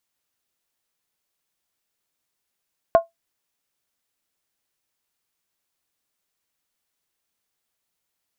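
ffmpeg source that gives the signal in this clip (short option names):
-f lavfi -i "aevalsrc='0.501*pow(10,-3*t/0.15)*sin(2*PI*669*t)+0.15*pow(10,-3*t/0.119)*sin(2*PI*1066.4*t)+0.0447*pow(10,-3*t/0.103)*sin(2*PI*1429*t)+0.0133*pow(10,-3*t/0.099)*sin(2*PI*1536*t)+0.00398*pow(10,-3*t/0.092)*sin(2*PI*1774.9*t)':d=0.63:s=44100"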